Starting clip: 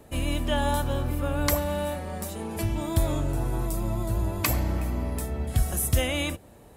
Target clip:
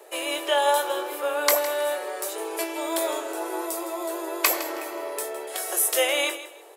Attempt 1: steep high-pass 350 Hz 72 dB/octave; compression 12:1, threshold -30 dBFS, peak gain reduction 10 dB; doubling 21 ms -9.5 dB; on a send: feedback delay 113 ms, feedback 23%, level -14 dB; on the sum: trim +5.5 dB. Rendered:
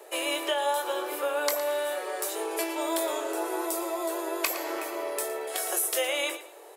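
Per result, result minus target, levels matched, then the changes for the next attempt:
compression: peak gain reduction +10 dB; echo 47 ms early
remove: compression 12:1, threshold -30 dBFS, peak gain reduction 10 dB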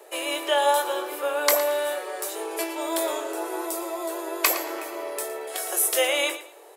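echo 47 ms early
change: feedback delay 160 ms, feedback 23%, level -14 dB

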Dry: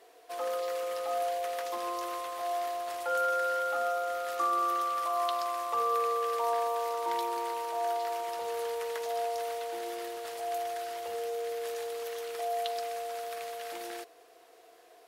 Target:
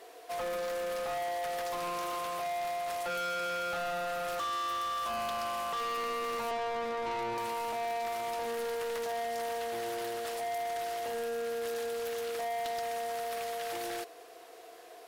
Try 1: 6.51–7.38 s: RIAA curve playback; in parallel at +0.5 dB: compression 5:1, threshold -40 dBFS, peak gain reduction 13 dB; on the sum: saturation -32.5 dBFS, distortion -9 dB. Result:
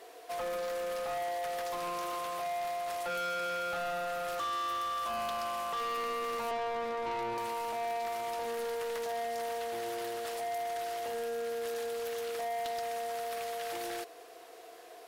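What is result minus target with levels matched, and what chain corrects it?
compression: peak gain reduction +7 dB
6.51–7.38 s: RIAA curve playback; in parallel at +0.5 dB: compression 5:1, threshold -31.5 dBFS, peak gain reduction 6 dB; on the sum: saturation -32.5 dBFS, distortion -8 dB

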